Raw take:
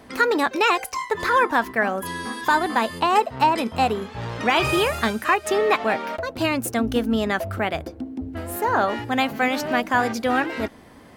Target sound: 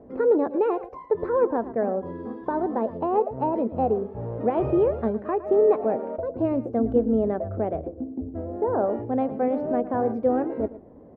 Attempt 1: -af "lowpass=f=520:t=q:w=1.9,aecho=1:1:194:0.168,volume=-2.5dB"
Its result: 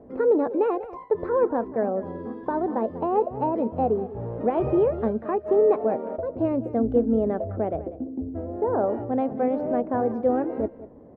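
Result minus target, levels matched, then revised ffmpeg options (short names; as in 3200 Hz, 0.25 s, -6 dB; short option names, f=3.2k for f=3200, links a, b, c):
echo 82 ms late
-af "lowpass=f=520:t=q:w=1.9,aecho=1:1:112:0.168,volume=-2.5dB"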